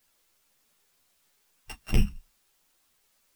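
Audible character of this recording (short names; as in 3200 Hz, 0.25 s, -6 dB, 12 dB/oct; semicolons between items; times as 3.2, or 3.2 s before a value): a buzz of ramps at a fixed pitch in blocks of 16 samples; tremolo triangle 4.1 Hz, depth 60%; a quantiser's noise floor 12-bit, dither triangular; a shimmering, thickened sound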